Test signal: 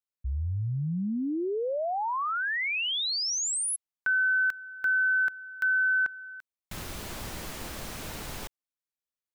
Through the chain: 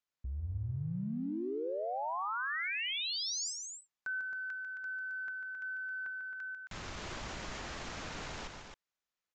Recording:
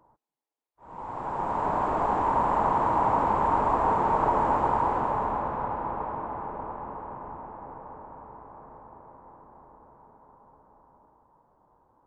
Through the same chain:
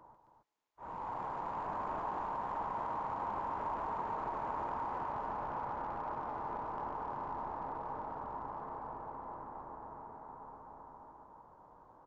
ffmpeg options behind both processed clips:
ffmpeg -i in.wav -af "equalizer=frequency=1400:width_type=o:width=2.2:gain=4.5,acompressor=threshold=-38dB:ratio=6:attack=0.11:release=69:knee=6:detection=peak,aecho=1:1:145.8|268.2:0.398|0.447,aresample=16000,aresample=44100,volume=1dB" out.wav

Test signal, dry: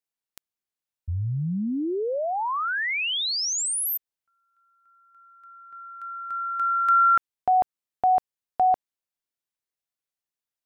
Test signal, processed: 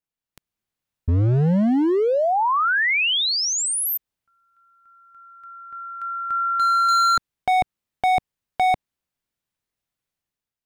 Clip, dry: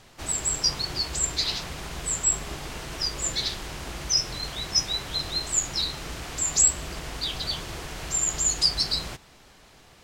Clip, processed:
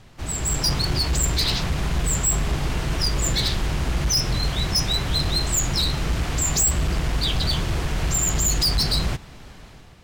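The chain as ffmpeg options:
ffmpeg -i in.wav -af "bass=frequency=250:gain=9,treble=frequency=4000:gain=-4,volume=23.5dB,asoftclip=hard,volume=-23.5dB,dynaudnorm=framelen=120:gausssize=7:maxgain=7dB" out.wav

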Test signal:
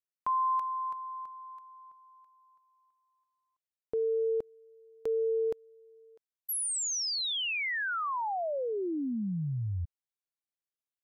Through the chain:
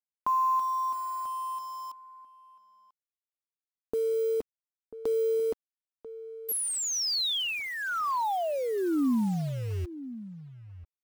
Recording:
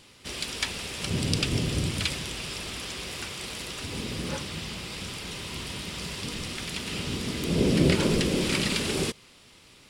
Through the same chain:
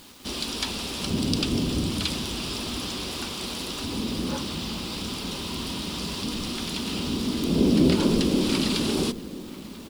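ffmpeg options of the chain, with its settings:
ffmpeg -i in.wav -filter_complex "[0:a]equalizer=frequency=125:width_type=o:width=1:gain=-8,equalizer=frequency=250:width_type=o:width=1:gain=8,equalizer=frequency=500:width_type=o:width=1:gain=-4,equalizer=frequency=1000:width_type=o:width=1:gain=3,equalizer=frequency=2000:width_type=o:width=1:gain=-10,equalizer=frequency=4000:width_type=o:width=1:gain=3,equalizer=frequency=8000:width_type=o:width=1:gain=-5,asplit=2[link_01][link_02];[link_02]acompressor=threshold=-35dB:ratio=12:attack=4.9:release=21:knee=1:detection=rms,volume=-1dB[link_03];[link_01][link_03]amix=inputs=2:normalize=0,acrusher=bits=7:mix=0:aa=0.000001,asplit=2[link_04][link_05];[link_05]adelay=991.3,volume=-14dB,highshelf=frequency=4000:gain=-22.3[link_06];[link_04][link_06]amix=inputs=2:normalize=0" out.wav

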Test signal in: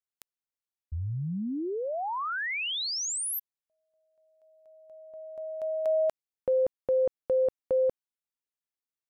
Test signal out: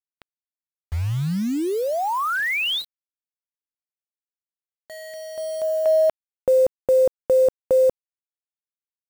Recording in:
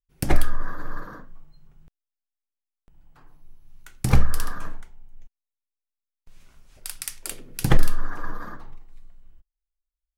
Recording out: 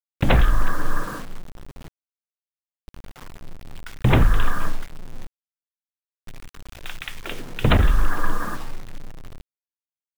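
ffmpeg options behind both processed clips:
ffmpeg -i in.wav -af "aresample=8000,aeval=exprs='0.141*(abs(mod(val(0)/0.141+3,4)-2)-1)':channel_layout=same,aresample=44100,acrusher=bits=7:mix=0:aa=0.000001,volume=8.5dB" out.wav

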